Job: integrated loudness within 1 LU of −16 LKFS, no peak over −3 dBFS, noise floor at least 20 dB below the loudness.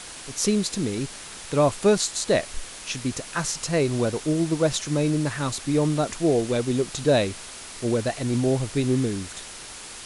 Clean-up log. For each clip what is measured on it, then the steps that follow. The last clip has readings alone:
background noise floor −40 dBFS; target noise floor −45 dBFS; integrated loudness −24.5 LKFS; sample peak −8.0 dBFS; target loudness −16.0 LKFS
→ noise reduction from a noise print 6 dB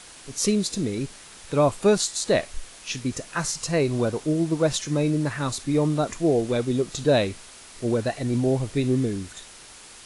background noise floor −46 dBFS; integrated loudness −24.5 LKFS; sample peak −8.0 dBFS; target loudness −16.0 LKFS
→ level +8.5 dB
brickwall limiter −3 dBFS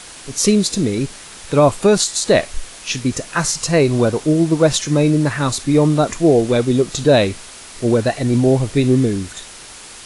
integrated loudness −16.5 LKFS; sample peak −3.0 dBFS; background noise floor −37 dBFS

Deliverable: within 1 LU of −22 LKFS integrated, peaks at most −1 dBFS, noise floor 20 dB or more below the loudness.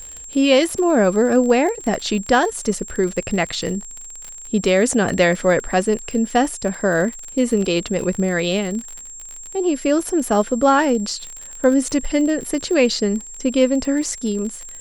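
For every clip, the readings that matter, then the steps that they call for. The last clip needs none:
crackle rate 39 per second; interfering tone 7,500 Hz; level of the tone −34 dBFS; integrated loudness −19.0 LKFS; sample peak −3.0 dBFS; target loudness −22.0 LKFS
→ click removal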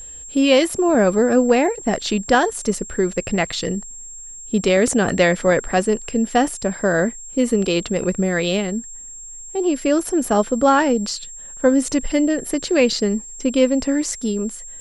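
crackle rate 0.34 per second; interfering tone 7,500 Hz; level of the tone −34 dBFS
→ notch filter 7,500 Hz, Q 30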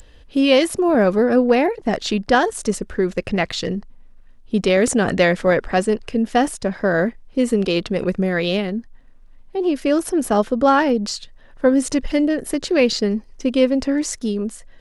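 interfering tone none found; integrated loudness −19.0 LKFS; sample peak −3.0 dBFS; target loudness −22.0 LKFS
→ level −3 dB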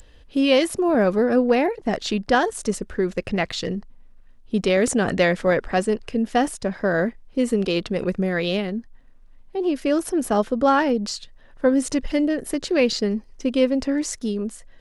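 integrated loudness −22.0 LKFS; sample peak −6.0 dBFS; background noise floor −49 dBFS

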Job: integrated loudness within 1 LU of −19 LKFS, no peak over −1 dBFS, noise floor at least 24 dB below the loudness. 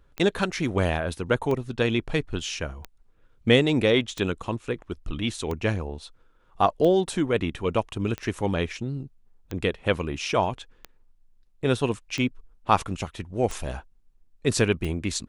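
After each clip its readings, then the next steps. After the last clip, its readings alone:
number of clicks 12; integrated loudness −26.5 LKFS; sample peak −5.0 dBFS; target loudness −19.0 LKFS
→ click removal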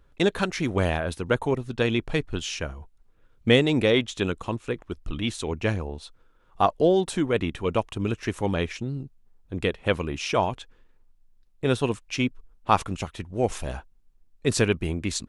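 number of clicks 0; integrated loudness −26.5 LKFS; sample peak −5.0 dBFS; target loudness −19.0 LKFS
→ level +7.5 dB
brickwall limiter −1 dBFS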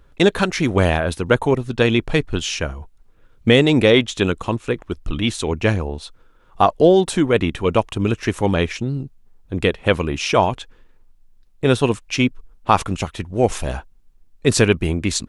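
integrated loudness −19.0 LKFS; sample peak −1.0 dBFS; background noise floor −52 dBFS

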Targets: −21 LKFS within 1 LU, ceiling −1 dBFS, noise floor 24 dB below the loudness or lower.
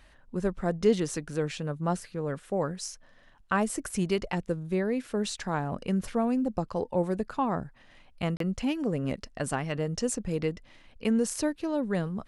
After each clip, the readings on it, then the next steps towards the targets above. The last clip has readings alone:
number of dropouts 1; longest dropout 33 ms; integrated loudness −30.5 LKFS; sample peak −11.5 dBFS; target loudness −21.0 LKFS
→ repair the gap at 0:08.37, 33 ms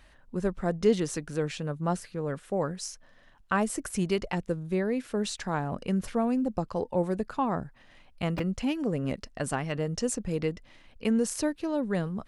number of dropouts 0; integrated loudness −30.5 LKFS; sample peak −11.5 dBFS; target loudness −21.0 LKFS
→ level +9.5 dB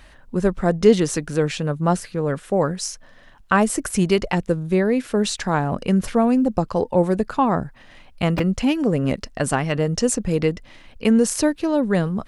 integrated loudness −21.0 LKFS; sample peak −2.0 dBFS; background noise floor −48 dBFS

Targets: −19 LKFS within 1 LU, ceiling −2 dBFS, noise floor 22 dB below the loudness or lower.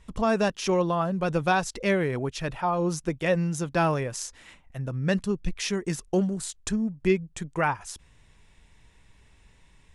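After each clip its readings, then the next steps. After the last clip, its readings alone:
integrated loudness −27.0 LKFS; sample peak −11.5 dBFS; target loudness −19.0 LKFS
→ level +8 dB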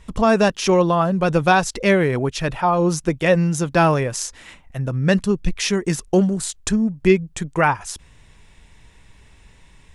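integrated loudness −19.0 LKFS; sample peak −3.5 dBFS; background noise floor −50 dBFS

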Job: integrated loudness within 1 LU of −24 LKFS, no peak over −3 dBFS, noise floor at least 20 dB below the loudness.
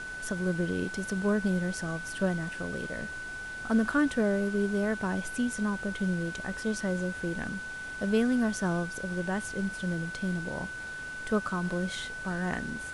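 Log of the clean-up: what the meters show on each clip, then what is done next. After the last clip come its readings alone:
interfering tone 1,500 Hz; level of the tone −37 dBFS; background noise floor −39 dBFS; target noise floor −51 dBFS; integrated loudness −31.0 LKFS; sample peak −15.5 dBFS; target loudness −24.0 LKFS
→ notch filter 1,500 Hz, Q 30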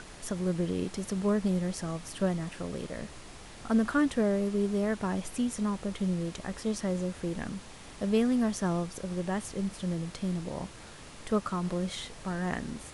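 interfering tone none found; background noise floor −48 dBFS; target noise floor −52 dBFS
→ noise reduction from a noise print 6 dB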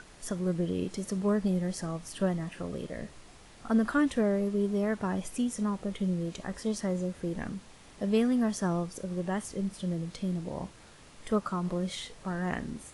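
background noise floor −53 dBFS; integrated loudness −31.5 LKFS; sample peak −16.5 dBFS; target loudness −24.0 LKFS
→ level +7.5 dB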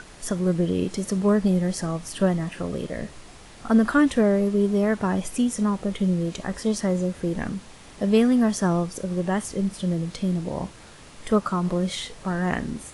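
integrated loudness −24.0 LKFS; sample peak −9.0 dBFS; background noise floor −46 dBFS

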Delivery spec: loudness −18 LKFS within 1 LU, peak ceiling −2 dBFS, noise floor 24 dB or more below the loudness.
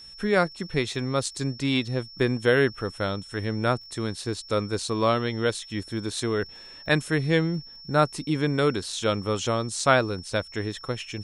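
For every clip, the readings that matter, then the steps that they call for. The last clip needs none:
crackle rate 24 per second; interfering tone 5,400 Hz; level of the tone −43 dBFS; integrated loudness −26.0 LKFS; sample peak −5.5 dBFS; target loudness −18.0 LKFS
→ click removal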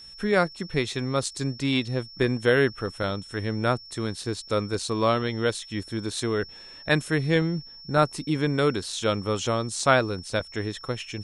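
crackle rate 0 per second; interfering tone 5,400 Hz; level of the tone −43 dBFS
→ notch filter 5,400 Hz, Q 30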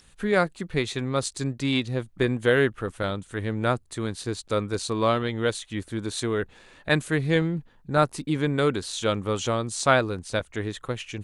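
interfering tone none found; integrated loudness −26.5 LKFS; sample peak −5.5 dBFS; target loudness −18.0 LKFS
→ level +8.5 dB
brickwall limiter −2 dBFS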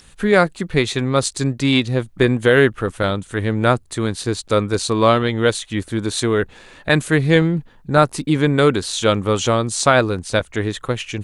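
integrated loudness −18.0 LKFS; sample peak −2.0 dBFS; background noise floor −48 dBFS

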